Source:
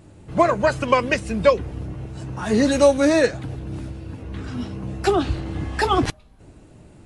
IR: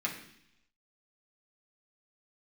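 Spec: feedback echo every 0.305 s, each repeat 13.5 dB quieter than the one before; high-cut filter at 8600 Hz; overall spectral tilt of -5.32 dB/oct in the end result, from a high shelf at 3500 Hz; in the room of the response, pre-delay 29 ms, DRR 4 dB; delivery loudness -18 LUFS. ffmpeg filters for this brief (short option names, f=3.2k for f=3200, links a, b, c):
-filter_complex "[0:a]lowpass=8.6k,highshelf=f=3.5k:g=-6.5,aecho=1:1:305|610:0.211|0.0444,asplit=2[a][b];[1:a]atrim=start_sample=2205,adelay=29[c];[b][c]afir=irnorm=-1:irlink=0,volume=-9dB[d];[a][d]amix=inputs=2:normalize=0,volume=2dB"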